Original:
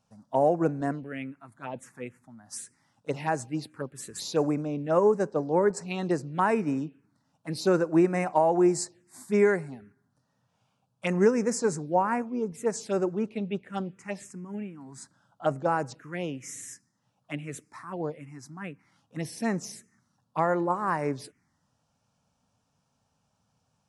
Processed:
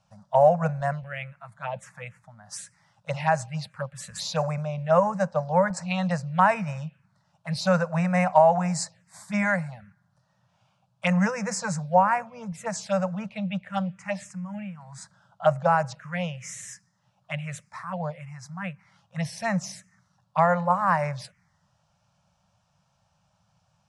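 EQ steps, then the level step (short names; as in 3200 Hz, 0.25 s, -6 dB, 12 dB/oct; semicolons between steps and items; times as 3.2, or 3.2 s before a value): elliptic band-stop 190–560 Hz, stop band 40 dB; air absorption 60 m; +7.0 dB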